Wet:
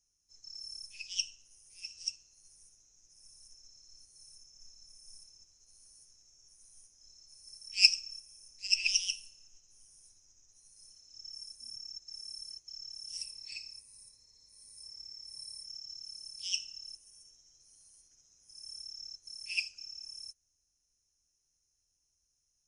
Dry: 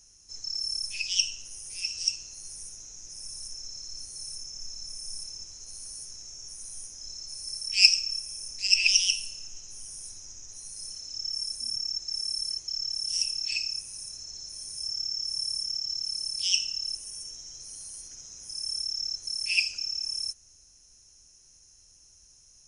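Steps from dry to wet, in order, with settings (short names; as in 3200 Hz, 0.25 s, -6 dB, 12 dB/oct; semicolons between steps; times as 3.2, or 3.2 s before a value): 13.17–15.66 ripple EQ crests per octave 0.95, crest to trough 10 dB; upward expander 1.5:1, over -48 dBFS; gain -4 dB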